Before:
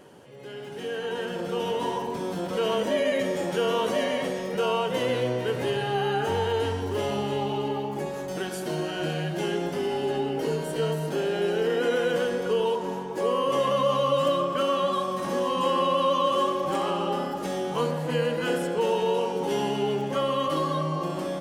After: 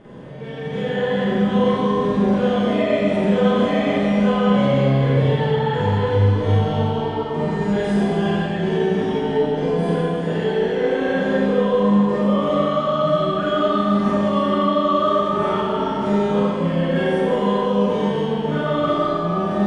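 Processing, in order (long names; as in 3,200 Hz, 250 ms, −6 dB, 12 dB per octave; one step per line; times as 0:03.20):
Chebyshev low-pass filter 9,000 Hz, order 8
bass and treble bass +13 dB, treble −14 dB
brickwall limiter −21.5 dBFS, peak gain reduction 10.5 dB
four-comb reverb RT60 2 s, combs from 33 ms, DRR −9.5 dB
wrong playback speed 44.1 kHz file played as 48 kHz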